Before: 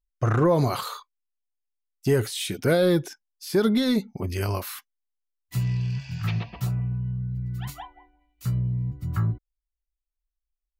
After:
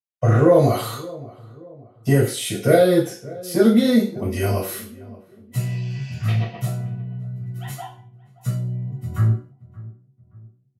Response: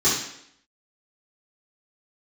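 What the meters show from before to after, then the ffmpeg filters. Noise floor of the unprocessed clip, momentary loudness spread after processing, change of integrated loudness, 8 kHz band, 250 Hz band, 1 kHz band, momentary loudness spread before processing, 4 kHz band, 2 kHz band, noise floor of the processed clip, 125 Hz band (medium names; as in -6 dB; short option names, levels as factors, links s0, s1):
-85 dBFS, 19 LU, +5.0 dB, +5.5 dB, +6.0 dB, +4.0 dB, 16 LU, +1.5 dB, +3.5 dB, -58 dBFS, +4.5 dB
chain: -filter_complex "[0:a]agate=range=0.2:threshold=0.00501:ratio=16:detection=peak,asplit=2[s0][s1];[s1]adelay=575,lowpass=f=1000:p=1,volume=0.112,asplit=2[s2][s3];[s3]adelay=575,lowpass=f=1000:p=1,volume=0.43,asplit=2[s4][s5];[s5]adelay=575,lowpass=f=1000:p=1,volume=0.43[s6];[s0][s2][s4][s6]amix=inputs=4:normalize=0[s7];[1:a]atrim=start_sample=2205,asetrate=74970,aresample=44100[s8];[s7][s8]afir=irnorm=-1:irlink=0,volume=0.376"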